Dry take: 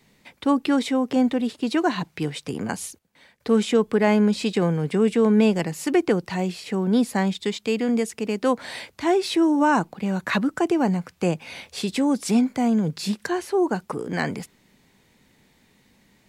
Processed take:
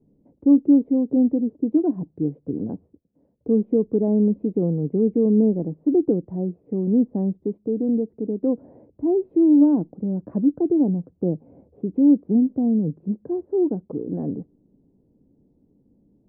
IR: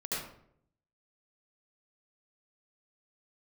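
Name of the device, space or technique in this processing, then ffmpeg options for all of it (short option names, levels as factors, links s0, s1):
under water: -af "lowpass=f=510:w=0.5412,lowpass=f=510:w=1.3066,equalizer=f=290:t=o:w=0.23:g=8"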